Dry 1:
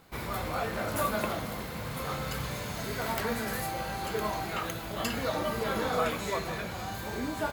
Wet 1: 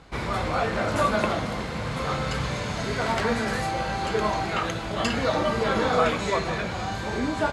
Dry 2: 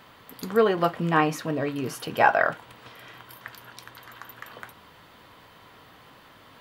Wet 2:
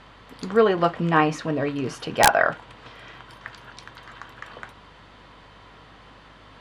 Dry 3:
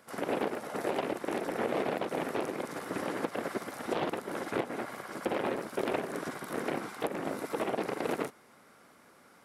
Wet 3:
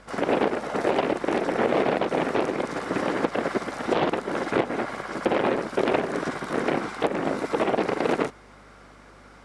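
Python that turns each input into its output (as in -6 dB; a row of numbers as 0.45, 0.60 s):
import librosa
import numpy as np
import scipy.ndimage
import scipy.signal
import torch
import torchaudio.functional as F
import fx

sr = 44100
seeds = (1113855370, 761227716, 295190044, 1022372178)

y = scipy.signal.sosfilt(scipy.signal.bessel(8, 6200.0, 'lowpass', norm='mag', fs=sr, output='sos'), x)
y = fx.add_hum(y, sr, base_hz=50, snr_db=30)
y = (np.mod(10.0 ** (6.0 / 20.0) * y + 1.0, 2.0) - 1.0) / 10.0 ** (6.0 / 20.0)
y = y * 10.0 ** (-26 / 20.0) / np.sqrt(np.mean(np.square(y)))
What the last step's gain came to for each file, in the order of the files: +7.0, +2.5, +9.0 dB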